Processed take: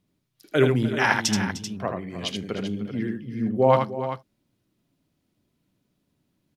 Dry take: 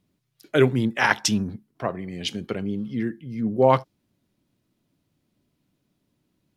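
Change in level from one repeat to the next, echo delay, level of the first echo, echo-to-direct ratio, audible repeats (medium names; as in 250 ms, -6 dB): no regular repeats, 78 ms, -5.0 dB, -3.5 dB, 3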